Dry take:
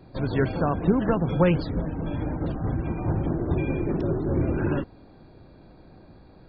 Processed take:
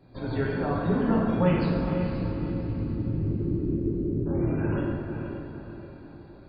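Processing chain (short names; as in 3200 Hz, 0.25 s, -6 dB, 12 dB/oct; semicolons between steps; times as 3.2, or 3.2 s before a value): 1.79–4.26 inverse Chebyshev low-pass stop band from 830 Hz, stop band 40 dB; diffused feedback echo 0.488 s, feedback 45%, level -7 dB; plate-style reverb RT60 1.5 s, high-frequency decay 0.8×, DRR -4.5 dB; gain -8.5 dB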